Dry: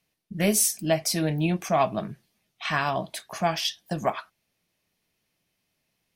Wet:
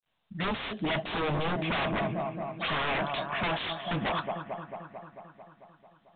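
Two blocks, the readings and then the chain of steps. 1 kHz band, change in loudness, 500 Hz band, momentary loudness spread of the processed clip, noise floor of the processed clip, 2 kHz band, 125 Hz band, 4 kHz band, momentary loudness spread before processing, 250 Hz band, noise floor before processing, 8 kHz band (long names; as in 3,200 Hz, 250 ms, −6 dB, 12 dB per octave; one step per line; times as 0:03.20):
−2.5 dB, −5.5 dB, −5.0 dB, 14 LU, −68 dBFS, +0.5 dB, −4.5 dB, −3.0 dB, 13 LU, −5.0 dB, −77 dBFS, below −40 dB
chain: fade in at the beginning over 0.68 s
low-shelf EQ 480 Hz −10 dB
in parallel at +1 dB: brickwall limiter −21 dBFS, peak gain reduction 9.5 dB
on the sum: phaser swept by the level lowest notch 360 Hz, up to 2,300 Hz, full sweep at −22.5 dBFS
gain into a clipping stage and back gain 19.5 dB
on a send: bucket-brigade delay 222 ms, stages 4,096, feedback 68%, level −12 dB
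on the sum: wave folding −28.5 dBFS
level +4.5 dB
mu-law 64 kbit/s 8,000 Hz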